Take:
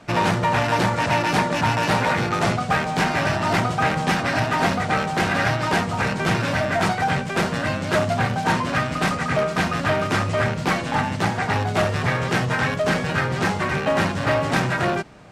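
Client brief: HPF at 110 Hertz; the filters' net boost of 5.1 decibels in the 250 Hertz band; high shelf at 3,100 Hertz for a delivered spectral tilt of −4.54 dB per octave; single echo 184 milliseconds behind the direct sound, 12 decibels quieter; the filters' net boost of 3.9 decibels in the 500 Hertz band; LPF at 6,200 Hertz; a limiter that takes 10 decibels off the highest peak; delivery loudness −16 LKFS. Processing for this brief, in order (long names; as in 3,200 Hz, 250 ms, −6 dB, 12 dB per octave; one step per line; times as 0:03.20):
high-pass filter 110 Hz
low-pass filter 6,200 Hz
parametric band 250 Hz +6.5 dB
parametric band 500 Hz +3.5 dB
high-shelf EQ 3,100 Hz +3 dB
brickwall limiter −14 dBFS
single-tap delay 184 ms −12 dB
level +6.5 dB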